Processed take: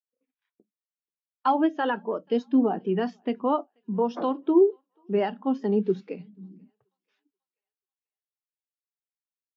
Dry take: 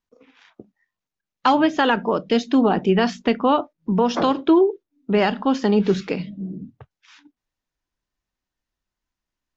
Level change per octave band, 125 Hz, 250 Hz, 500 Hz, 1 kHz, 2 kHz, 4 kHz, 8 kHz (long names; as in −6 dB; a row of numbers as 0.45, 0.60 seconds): −9.5 dB, −6.0 dB, −5.0 dB, −7.0 dB, −11.5 dB, −15.0 dB, can't be measured